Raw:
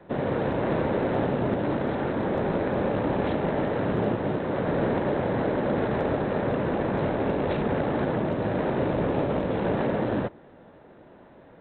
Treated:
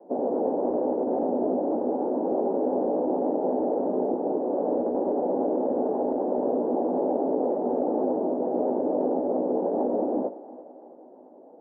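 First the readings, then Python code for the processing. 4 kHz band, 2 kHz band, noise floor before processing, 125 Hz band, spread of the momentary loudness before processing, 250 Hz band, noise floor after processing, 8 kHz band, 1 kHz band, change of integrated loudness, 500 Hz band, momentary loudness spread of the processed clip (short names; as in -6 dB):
under -40 dB, under -25 dB, -51 dBFS, under -15 dB, 2 LU, 0.0 dB, -49 dBFS, n/a, -0.5 dB, +0.5 dB, +2.0 dB, 1 LU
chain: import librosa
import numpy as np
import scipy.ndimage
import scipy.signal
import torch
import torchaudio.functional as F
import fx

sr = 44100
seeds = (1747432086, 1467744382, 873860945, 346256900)

y = scipy.signal.sosfilt(scipy.signal.cheby1(3, 1.0, [250.0, 810.0], 'bandpass', fs=sr, output='sos'), x)
y = fx.room_early_taps(y, sr, ms=(16, 55), db=(-6.0, -18.0))
y = fx.vibrato(y, sr, rate_hz=8.9, depth_cents=27.0)
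y = fx.over_compress(y, sr, threshold_db=-26.0, ratio=-0.5)
y = fx.echo_thinned(y, sr, ms=338, feedback_pct=60, hz=420.0, wet_db=-15)
y = y * 10.0 ** (1.5 / 20.0)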